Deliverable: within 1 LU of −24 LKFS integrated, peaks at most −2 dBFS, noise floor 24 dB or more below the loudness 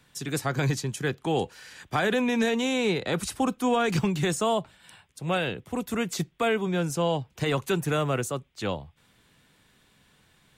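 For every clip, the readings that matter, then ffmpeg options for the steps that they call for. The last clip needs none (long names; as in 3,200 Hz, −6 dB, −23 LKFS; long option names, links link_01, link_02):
integrated loudness −27.5 LKFS; sample peak −14.0 dBFS; target loudness −24.0 LKFS
→ -af "volume=3.5dB"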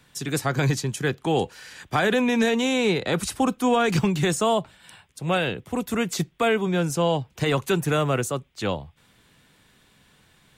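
integrated loudness −24.0 LKFS; sample peak −10.5 dBFS; background noise floor −60 dBFS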